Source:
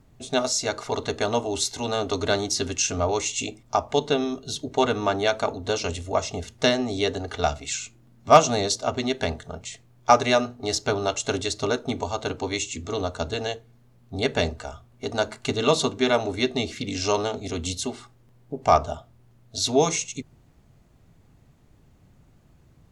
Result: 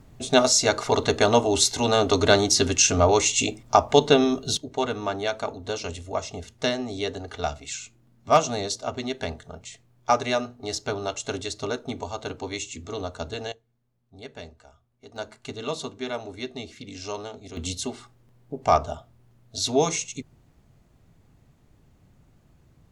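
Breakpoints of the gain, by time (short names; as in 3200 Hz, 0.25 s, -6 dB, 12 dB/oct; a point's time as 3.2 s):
+5.5 dB
from 4.57 s -4.5 dB
from 13.52 s -17 dB
from 15.16 s -10 dB
from 17.57 s -1.5 dB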